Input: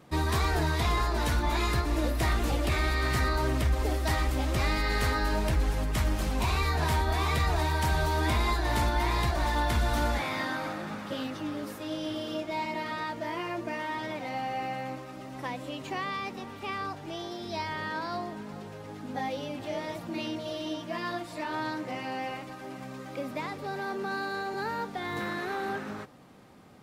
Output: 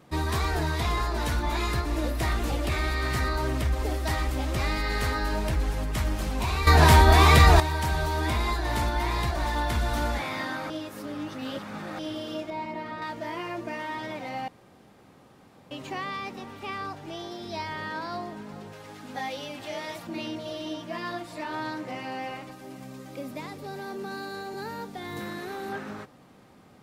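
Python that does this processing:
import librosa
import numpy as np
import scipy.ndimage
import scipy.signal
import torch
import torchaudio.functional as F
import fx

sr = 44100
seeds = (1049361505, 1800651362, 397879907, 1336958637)

y = fx.high_shelf(x, sr, hz=2400.0, db=-11.5, at=(12.5, 13.02))
y = fx.tilt_shelf(y, sr, db=-5.0, hz=830.0, at=(18.73, 20.07))
y = fx.curve_eq(y, sr, hz=(270.0, 1400.0, 14000.0), db=(0, -6, 5), at=(22.51, 25.72))
y = fx.edit(y, sr, fx.clip_gain(start_s=6.67, length_s=0.93, db=11.5),
    fx.reverse_span(start_s=10.7, length_s=1.29),
    fx.room_tone_fill(start_s=14.48, length_s=1.23), tone=tone)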